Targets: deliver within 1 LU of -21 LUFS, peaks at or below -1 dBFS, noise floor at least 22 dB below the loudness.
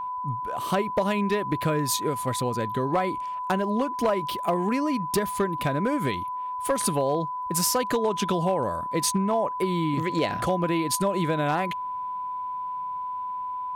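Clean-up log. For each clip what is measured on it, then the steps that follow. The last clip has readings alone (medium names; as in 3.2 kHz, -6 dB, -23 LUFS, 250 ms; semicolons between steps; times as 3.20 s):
clipped samples 0.5%; clipping level -16.5 dBFS; steady tone 1 kHz; tone level -29 dBFS; loudness -26.5 LUFS; peak level -16.5 dBFS; loudness target -21.0 LUFS
-> clip repair -16.5 dBFS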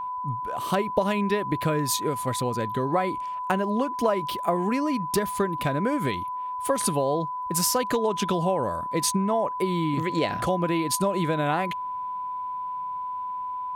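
clipped samples 0.0%; steady tone 1 kHz; tone level -29 dBFS
-> band-stop 1 kHz, Q 30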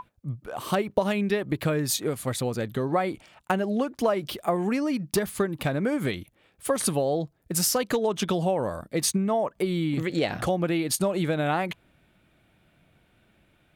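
steady tone not found; loudness -27.0 LUFS; peak level -9.5 dBFS; loudness target -21.0 LUFS
-> trim +6 dB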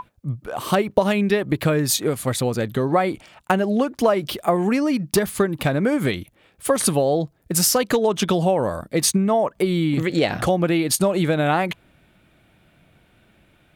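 loudness -21.0 LUFS; peak level -3.5 dBFS; noise floor -59 dBFS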